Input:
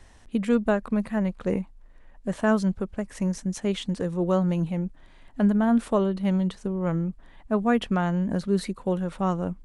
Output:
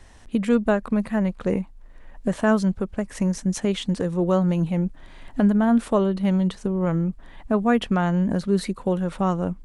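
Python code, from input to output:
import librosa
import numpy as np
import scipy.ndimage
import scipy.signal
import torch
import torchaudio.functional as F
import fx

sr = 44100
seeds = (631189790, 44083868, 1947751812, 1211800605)

y = fx.recorder_agc(x, sr, target_db=-16.0, rise_db_per_s=9.2, max_gain_db=30)
y = y * 10.0 ** (2.5 / 20.0)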